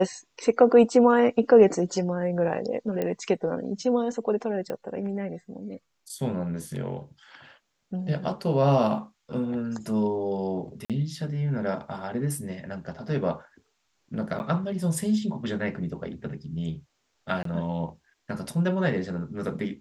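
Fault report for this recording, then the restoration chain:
0:03.02: click −16 dBFS
0:04.70: click −20 dBFS
0:10.85–0:10.90: drop-out 47 ms
0:14.39–0:14.40: drop-out 9.7 ms
0:17.43–0:17.45: drop-out 23 ms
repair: click removal
repair the gap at 0:10.85, 47 ms
repair the gap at 0:14.39, 9.7 ms
repair the gap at 0:17.43, 23 ms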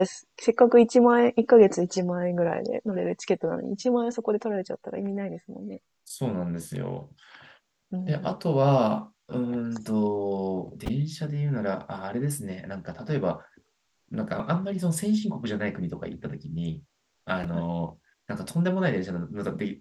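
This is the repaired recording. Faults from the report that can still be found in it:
none of them is left

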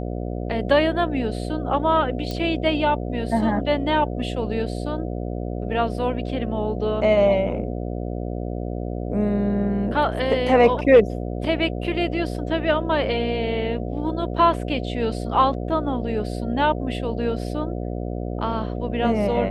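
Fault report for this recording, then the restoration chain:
mains buzz 60 Hz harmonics 12 −28 dBFS
0:02.31: click −16 dBFS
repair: click removal
hum removal 60 Hz, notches 12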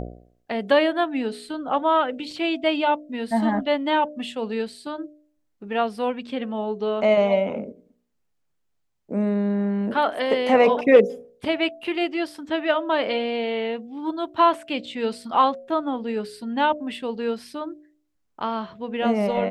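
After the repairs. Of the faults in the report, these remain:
none of them is left

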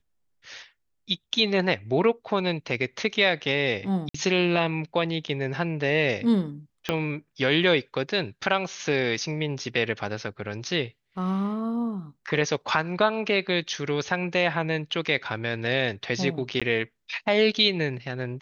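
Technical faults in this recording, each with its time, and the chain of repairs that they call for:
0:04.09–0:04.14: drop-out 54 ms
0:06.89: click −11 dBFS
0:16.60–0:16.62: drop-out 16 ms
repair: click removal
repair the gap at 0:04.09, 54 ms
repair the gap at 0:16.60, 16 ms

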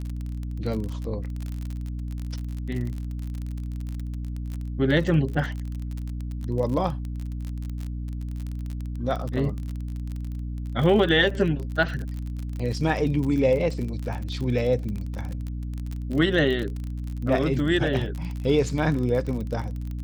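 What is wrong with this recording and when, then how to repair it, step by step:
surface crackle 36 per second −29 dBFS
mains hum 60 Hz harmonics 5 −31 dBFS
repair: click removal
hum removal 60 Hz, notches 5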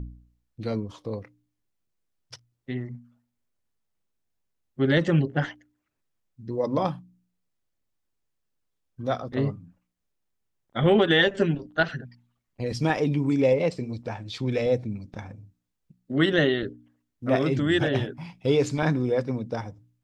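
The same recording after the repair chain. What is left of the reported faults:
none of them is left

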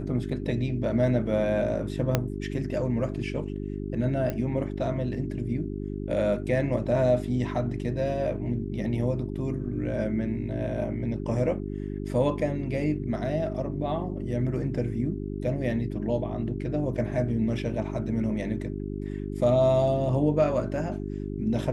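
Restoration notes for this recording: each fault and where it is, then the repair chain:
mains hum 50 Hz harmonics 8 −33 dBFS
0:02.15: click −8 dBFS
0:04.30: click −17 dBFS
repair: click removal
hum removal 50 Hz, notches 8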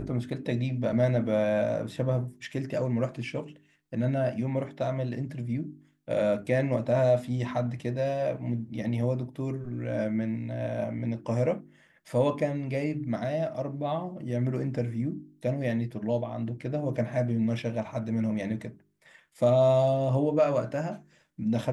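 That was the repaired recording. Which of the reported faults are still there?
0:02.15: click

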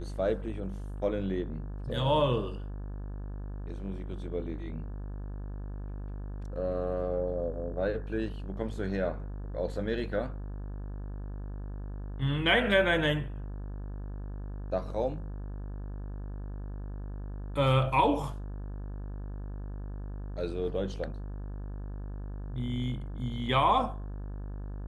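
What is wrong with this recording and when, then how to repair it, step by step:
mains buzz 50 Hz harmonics 35 −38 dBFS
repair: hum removal 50 Hz, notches 35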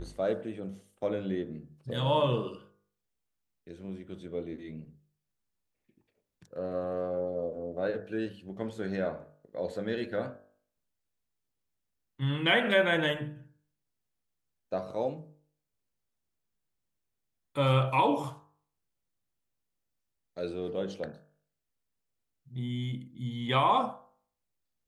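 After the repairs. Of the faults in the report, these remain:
none of them is left

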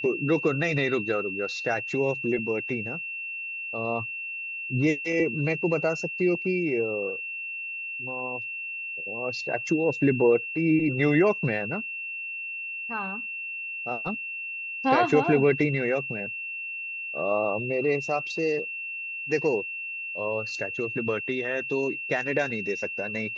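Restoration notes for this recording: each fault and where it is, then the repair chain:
whistle 2,700 Hz −32 dBFS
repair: notch filter 2,700 Hz, Q 30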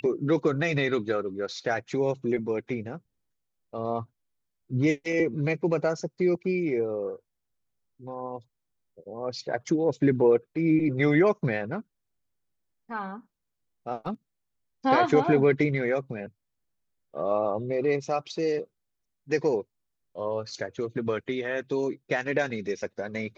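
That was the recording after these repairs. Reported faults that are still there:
none of them is left

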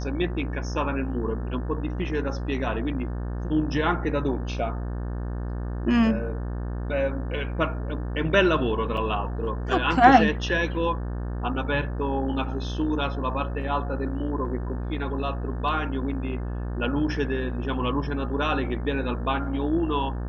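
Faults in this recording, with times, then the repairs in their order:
mains buzz 60 Hz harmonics 30 −30 dBFS
0:08.97: drop-out 4.1 ms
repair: hum removal 60 Hz, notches 30
repair the gap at 0:08.97, 4.1 ms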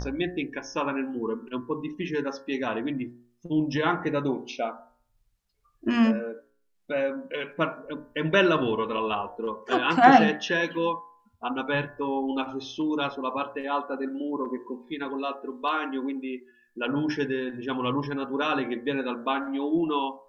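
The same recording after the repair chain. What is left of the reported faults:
none of them is left

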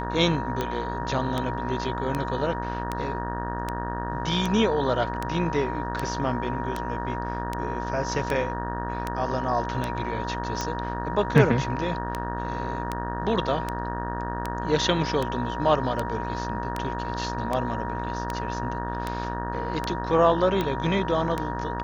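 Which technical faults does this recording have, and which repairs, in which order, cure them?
mains buzz 60 Hz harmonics 31 −32 dBFS
scratch tick 78 rpm −13 dBFS
whistle 950 Hz −32 dBFS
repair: click removal
notch filter 950 Hz, Q 30
hum removal 60 Hz, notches 31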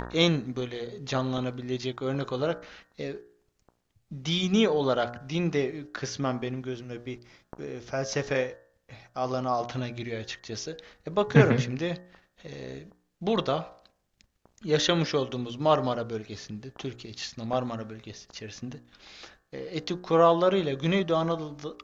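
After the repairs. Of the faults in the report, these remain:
none of them is left

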